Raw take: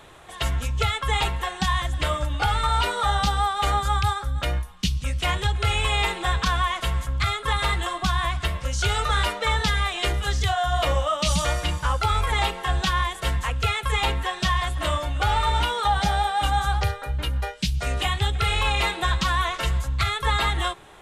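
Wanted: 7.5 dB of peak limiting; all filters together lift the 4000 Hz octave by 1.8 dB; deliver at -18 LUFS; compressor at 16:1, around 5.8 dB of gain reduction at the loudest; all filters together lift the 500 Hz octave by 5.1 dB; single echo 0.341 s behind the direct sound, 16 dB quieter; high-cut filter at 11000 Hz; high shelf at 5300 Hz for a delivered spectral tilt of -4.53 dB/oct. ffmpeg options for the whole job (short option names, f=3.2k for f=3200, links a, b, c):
-af "lowpass=11k,equalizer=f=500:t=o:g=6.5,equalizer=f=4k:t=o:g=5.5,highshelf=f=5.3k:g=-9,acompressor=threshold=-22dB:ratio=16,alimiter=limit=-19dB:level=0:latency=1,aecho=1:1:341:0.158,volume=10.5dB"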